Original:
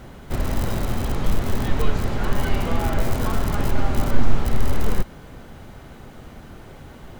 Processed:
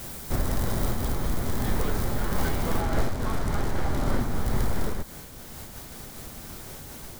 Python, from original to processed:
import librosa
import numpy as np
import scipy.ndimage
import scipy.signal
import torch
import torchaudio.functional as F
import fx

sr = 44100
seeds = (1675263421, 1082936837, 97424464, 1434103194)

y = fx.self_delay(x, sr, depth_ms=0.56)
y = fx.dmg_noise_colour(y, sr, seeds[0], colour='white', level_db=-43.0)
y = fx.high_shelf(y, sr, hz=9200.0, db=fx.steps((0.0, 6.5), (2.79, -5.0), (4.19, 2.0)))
y = 10.0 ** (-15.0 / 20.0) * (np.abs((y / 10.0 ** (-15.0 / 20.0) + 3.0) % 4.0 - 2.0) - 1.0)
y = fx.dynamic_eq(y, sr, hz=2700.0, q=3.6, threshold_db=-54.0, ratio=4.0, max_db=-7)
y = fx.am_noise(y, sr, seeds[1], hz=5.7, depth_pct=55)